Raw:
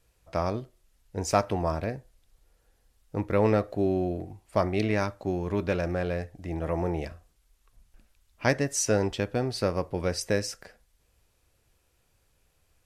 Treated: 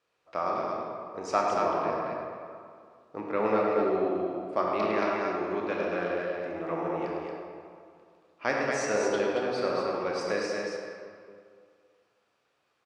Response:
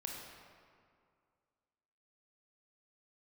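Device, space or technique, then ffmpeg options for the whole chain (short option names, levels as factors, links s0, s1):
station announcement: -filter_complex "[0:a]highpass=320,lowpass=4300,equalizer=f=1200:t=o:w=0.28:g=8,aecho=1:1:105|227.4:0.355|0.631[s0];[1:a]atrim=start_sample=2205[s1];[s0][s1]afir=irnorm=-1:irlink=0"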